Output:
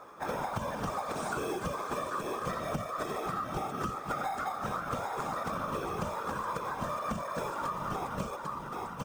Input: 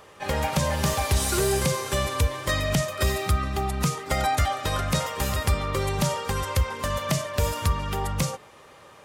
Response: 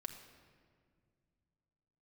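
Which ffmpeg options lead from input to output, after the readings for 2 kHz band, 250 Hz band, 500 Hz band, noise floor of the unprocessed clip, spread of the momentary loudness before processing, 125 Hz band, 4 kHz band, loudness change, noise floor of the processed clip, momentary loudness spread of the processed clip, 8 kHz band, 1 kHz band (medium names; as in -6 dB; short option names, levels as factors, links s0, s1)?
-9.5 dB, -8.0 dB, -8.0 dB, -50 dBFS, 5 LU, -16.0 dB, -16.5 dB, -9.5 dB, -41 dBFS, 1 LU, -17.5 dB, -4.0 dB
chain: -filter_complex "[0:a]highshelf=f=1800:t=q:w=3:g=-10.5,afftfilt=real='re*between(b*sr/4096,130,9500)':imag='im*between(b*sr/4096,130,9500)':win_size=4096:overlap=0.75,acrossover=split=630[s0][s1];[s0]acrusher=samples=15:mix=1:aa=0.000001[s2];[s2][s1]amix=inputs=2:normalize=0,aecho=1:1:799:0.398,areverse,acompressor=mode=upward:threshold=0.00501:ratio=2.5,areverse,afftfilt=real='hypot(re,im)*cos(2*PI*random(0))':imag='hypot(re,im)*sin(2*PI*random(1))':win_size=512:overlap=0.75,acompressor=threshold=0.0178:ratio=6,volume=1.5" -ar 44100 -c:a adpcm_ima_wav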